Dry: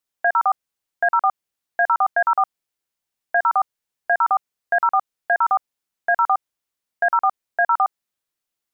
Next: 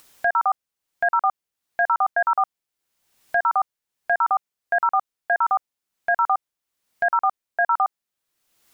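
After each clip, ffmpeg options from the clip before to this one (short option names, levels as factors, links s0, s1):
-af "acompressor=mode=upward:threshold=0.0355:ratio=2.5,volume=0.794"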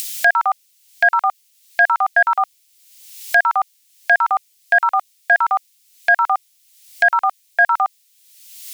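-af "equalizer=f=200:t=o:w=1.6:g=-14.5,aexciter=amount=8.9:drive=4.6:freq=2000,volume=1.78"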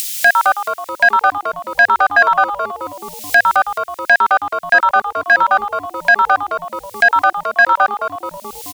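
-filter_complex "[0:a]acontrast=44,asplit=8[s0][s1][s2][s3][s4][s5][s6][s7];[s1]adelay=215,afreqshift=-120,volume=0.355[s8];[s2]adelay=430,afreqshift=-240,volume=0.2[s9];[s3]adelay=645,afreqshift=-360,volume=0.111[s10];[s4]adelay=860,afreqshift=-480,volume=0.0624[s11];[s5]adelay=1075,afreqshift=-600,volume=0.0351[s12];[s6]adelay=1290,afreqshift=-720,volume=0.0195[s13];[s7]adelay=1505,afreqshift=-840,volume=0.011[s14];[s0][s8][s9][s10][s11][s12][s13][s14]amix=inputs=8:normalize=0,volume=0.891"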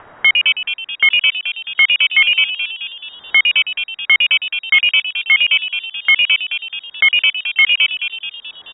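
-af "lowpass=f=3200:t=q:w=0.5098,lowpass=f=3200:t=q:w=0.6013,lowpass=f=3200:t=q:w=0.9,lowpass=f=3200:t=q:w=2.563,afreqshift=-3800,volume=0.891"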